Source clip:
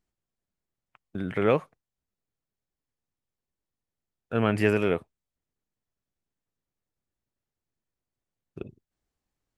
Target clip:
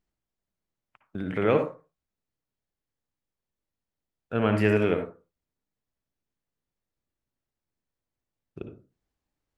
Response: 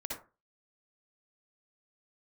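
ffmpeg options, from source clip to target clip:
-filter_complex "[0:a]asplit=2[s0][s1];[1:a]atrim=start_sample=2205,lowpass=6900[s2];[s1][s2]afir=irnorm=-1:irlink=0,volume=0.841[s3];[s0][s3]amix=inputs=2:normalize=0,volume=0.596"

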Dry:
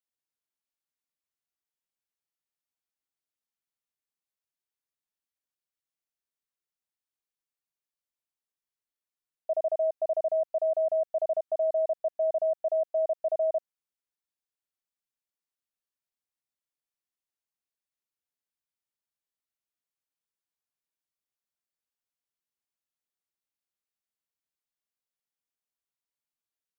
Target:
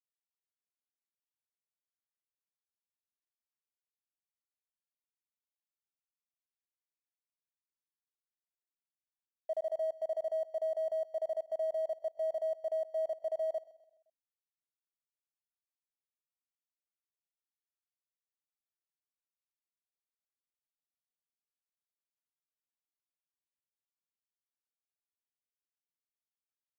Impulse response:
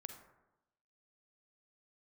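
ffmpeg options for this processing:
-af "aeval=exprs='sgn(val(0))*max(abs(val(0))-0.00237,0)':c=same,aecho=1:1:129|258|387|516:0.106|0.0487|0.0224|0.0103,volume=0.473"

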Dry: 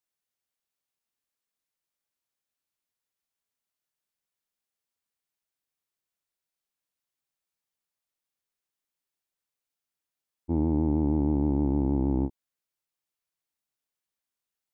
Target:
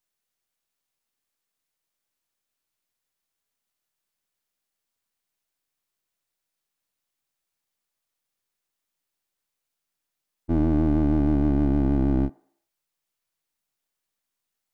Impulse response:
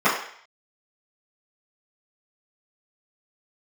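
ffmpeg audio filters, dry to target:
-filter_complex "[0:a]aeval=exprs='if(lt(val(0),0),0.447*val(0),val(0))':c=same,asplit=2[s0][s1];[1:a]atrim=start_sample=2205,asetrate=40131,aresample=44100[s2];[s1][s2]afir=irnorm=-1:irlink=0,volume=0.01[s3];[s0][s3]amix=inputs=2:normalize=0,volume=2.37"

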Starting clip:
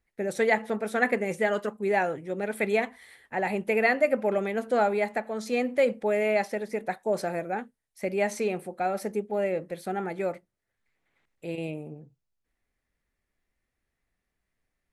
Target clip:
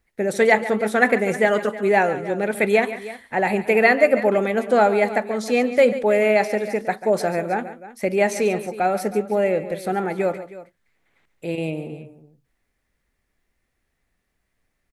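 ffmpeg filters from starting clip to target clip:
-af "aecho=1:1:141|317:0.2|0.15,volume=2.37"

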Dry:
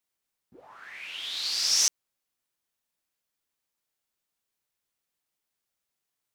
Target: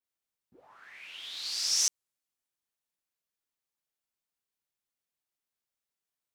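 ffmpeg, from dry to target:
-af "adynamicequalizer=threshold=0.0158:dfrequency=8200:dqfactor=0.83:tfrequency=8200:tqfactor=0.83:attack=5:release=100:ratio=0.375:range=2.5:mode=boostabove:tftype=bell,volume=0.447"

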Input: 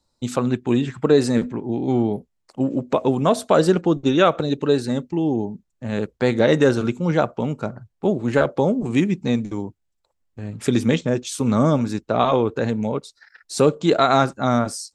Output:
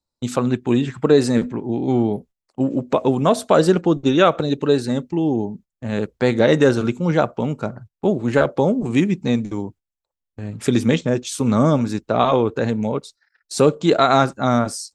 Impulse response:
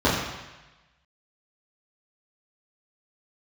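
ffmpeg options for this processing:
-af "agate=range=0.178:threshold=0.00794:ratio=16:detection=peak,volume=1.19"

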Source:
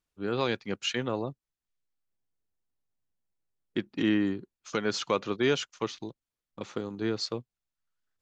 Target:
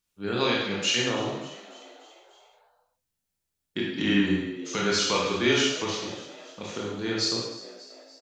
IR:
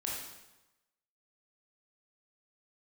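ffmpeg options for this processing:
-filter_complex "[0:a]highshelf=f=2100:g=10,asettb=1/sr,asplit=3[s0][s1][s2];[s0]atrim=end=3.994[s3];[s1]atrim=start=3.99:end=6.06,asetpts=PTS-STARTPTS,afade=t=in:d=0.004:c=qsin,afade=t=out:st=2.066:d=0.004:c=qsin,afreqshift=-13[s4];[s2]atrim=start=6.056[s5];[s3][s4]acrossfade=d=0.004:c1=hsin:c2=qsin[s6];[s6][s5]acrossfade=d=0.004:c1=qsin:c2=hsin,equalizer=f=180:w=4.5:g=6,asplit=6[s7][s8][s9][s10][s11][s12];[s8]adelay=292,afreqshift=73,volume=0.141[s13];[s9]adelay=584,afreqshift=146,volume=0.0822[s14];[s10]adelay=876,afreqshift=219,volume=0.0473[s15];[s11]adelay=1168,afreqshift=292,volume=0.0275[s16];[s12]adelay=1460,afreqshift=365,volume=0.016[s17];[s7][s13][s14][s15][s16][s17]amix=inputs=6:normalize=0[s18];[1:a]atrim=start_sample=2205,afade=t=out:st=0.29:d=0.01,atrim=end_sample=13230[s19];[s18][s19]afir=irnorm=-1:irlink=0"

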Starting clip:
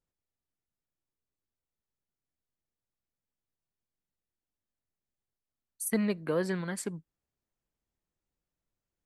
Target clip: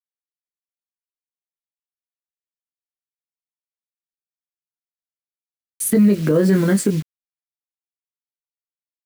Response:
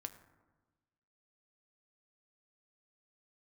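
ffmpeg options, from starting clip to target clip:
-filter_complex "[0:a]asplit=2[s0][s1];[s1]acompressor=threshold=0.0112:ratio=6,volume=1.19[s2];[s0][s2]amix=inputs=2:normalize=0,asplit=2[s3][s4];[s4]adelay=20,volume=0.562[s5];[s3][s5]amix=inputs=2:normalize=0,acrossover=split=100|1200[s6][s7][s8];[s7]dynaudnorm=f=640:g=7:m=4.73[s9];[s6][s9][s8]amix=inputs=3:normalize=0,acrusher=bits=6:mix=0:aa=0.000001,equalizer=f=860:w=1.3:g=-14,alimiter=level_in=5.01:limit=0.891:release=50:level=0:latency=1,volume=0.473"

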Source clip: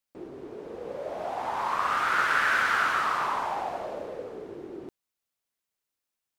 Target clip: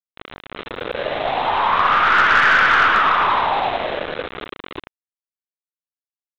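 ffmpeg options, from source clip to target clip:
-af "aeval=exprs='val(0)+0.5*0.02*sgn(val(0))':c=same,afftdn=nr=15:nf=-47,highpass=f=120:p=1,lowshelf=f=430:g=-3.5,bandreject=f=60:t=h:w=6,bandreject=f=120:t=h:w=6,bandreject=f=180:t=h:w=6,bandreject=f=240:t=h:w=6,bandreject=f=300:t=h:w=6,bandreject=f=360:t=h:w=6,acontrast=33,aeval=exprs='val(0)+0.00447*sin(2*PI*1200*n/s)':c=same,aresample=8000,aeval=exprs='val(0)*gte(abs(val(0)),0.0473)':c=same,aresample=44100,aeval=exprs='0.422*(cos(1*acos(clip(val(0)/0.422,-1,1)))-cos(1*PI/2))+0.0266*(cos(4*acos(clip(val(0)/0.422,-1,1)))-cos(4*PI/2))+0.0266*(cos(5*acos(clip(val(0)/0.422,-1,1)))-cos(5*PI/2))+0.00422*(cos(7*acos(clip(val(0)/0.422,-1,1)))-cos(7*PI/2))':c=same,volume=1.58"

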